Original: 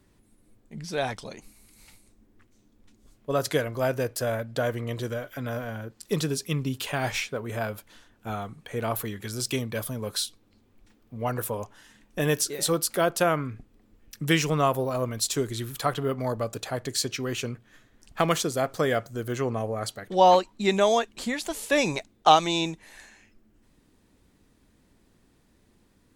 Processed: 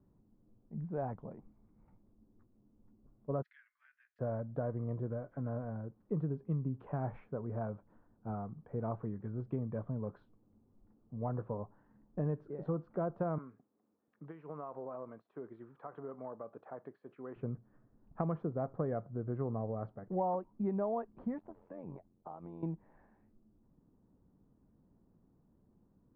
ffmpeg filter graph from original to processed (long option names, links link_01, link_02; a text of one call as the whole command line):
ffmpeg -i in.wav -filter_complex "[0:a]asettb=1/sr,asplit=3[link_01][link_02][link_03];[link_01]atrim=end=3.424[link_04];[link_02]atrim=start=3.42:end=4.19,asetpts=PTS-STARTPTS,afade=type=in:duration=0.004:curve=qsin,afade=type=out:start_time=0.766:duration=0.004:curve=qsin,asuperpass=centerf=3700:order=12:qfactor=0.65,highshelf=frequency=3800:gain=9.5[link_05];[link_03]atrim=start=4.186[link_06];[link_04][link_05]acrossfade=duration=0.004:curve1=hsin:curve2=qsin[link_07];[link_07][link_06]acrossfade=duration=0.004:curve1=qsin:curve2=hsin,asettb=1/sr,asplit=3[link_08][link_09][link_10];[link_08]atrim=end=13.384[link_11];[link_09]atrim=start=13.38:end=17.36,asetpts=PTS-STARTPTS,afade=type=in:duration=0.004:curve=qsin,afade=type=out:start_time=3.976:duration=0.004:curve=qsin,tiltshelf=frequency=1200:gain=-5.5,acompressor=threshold=-28dB:ratio=16:attack=3.2:release=140:knee=1:detection=peak,highpass=310,lowpass=5100[link_12];[link_10]atrim=start=17.356[link_13];[link_11][link_12]acrossfade=duration=0.004:curve1=hsin:curve2=qsin[link_14];[link_14][link_13]acrossfade=duration=0.004:curve1=qsin:curve2=hsin,asettb=1/sr,asplit=3[link_15][link_16][link_17];[link_15]atrim=end=21.384[link_18];[link_16]atrim=start=21.38:end=22.63,asetpts=PTS-STARTPTS,afade=type=in:duration=0.004:curve=qsin,afade=type=out:start_time=1.246:duration=0.004:curve=qsin,acompressor=threshold=-34dB:ratio=4:attack=3.2:release=140:knee=1:detection=peak,tremolo=f=89:d=0.824[link_19];[link_17]atrim=start=22.626[link_20];[link_18][link_19]acrossfade=duration=0.004:curve1=hsin:curve2=qsin[link_21];[link_21][link_20]acrossfade=duration=0.004:curve1=qsin:curve2=hsin,lowpass=frequency=1100:width=0.5412,lowpass=frequency=1100:width=1.3066,equalizer=frequency=160:width=1.2:gain=8,acompressor=threshold=-22dB:ratio=6,volume=-9dB" out.wav